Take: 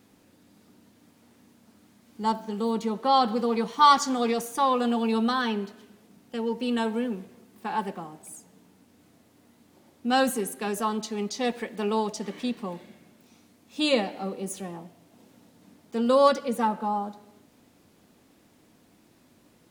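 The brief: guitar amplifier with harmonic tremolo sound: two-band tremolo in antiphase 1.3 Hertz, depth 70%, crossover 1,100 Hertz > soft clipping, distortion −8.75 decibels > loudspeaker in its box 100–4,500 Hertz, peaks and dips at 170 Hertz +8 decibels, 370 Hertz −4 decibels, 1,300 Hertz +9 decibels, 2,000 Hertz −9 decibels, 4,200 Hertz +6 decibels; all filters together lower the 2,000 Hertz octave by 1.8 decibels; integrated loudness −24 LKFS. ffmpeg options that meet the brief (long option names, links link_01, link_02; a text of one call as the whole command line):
ffmpeg -i in.wav -filter_complex "[0:a]equalizer=frequency=2000:width_type=o:gain=-4,acrossover=split=1100[link_01][link_02];[link_01]aeval=exprs='val(0)*(1-0.7/2+0.7/2*cos(2*PI*1.3*n/s))':channel_layout=same[link_03];[link_02]aeval=exprs='val(0)*(1-0.7/2-0.7/2*cos(2*PI*1.3*n/s))':channel_layout=same[link_04];[link_03][link_04]amix=inputs=2:normalize=0,asoftclip=threshold=-24.5dB,highpass=100,equalizer=frequency=170:width_type=q:width=4:gain=8,equalizer=frequency=370:width_type=q:width=4:gain=-4,equalizer=frequency=1300:width_type=q:width=4:gain=9,equalizer=frequency=2000:width_type=q:width=4:gain=-9,equalizer=frequency=4200:width_type=q:width=4:gain=6,lowpass=frequency=4500:width=0.5412,lowpass=frequency=4500:width=1.3066,volume=9dB" out.wav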